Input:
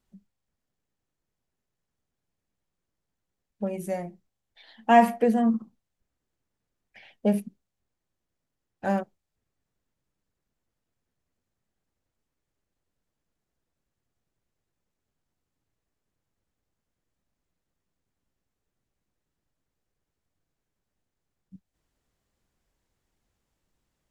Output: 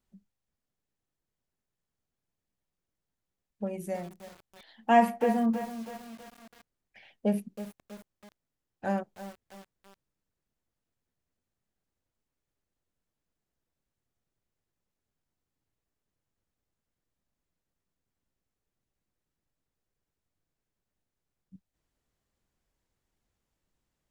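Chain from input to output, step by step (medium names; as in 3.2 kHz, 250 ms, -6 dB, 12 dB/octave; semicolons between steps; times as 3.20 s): bit-crushed delay 323 ms, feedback 55%, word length 6-bit, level -11.5 dB; trim -4 dB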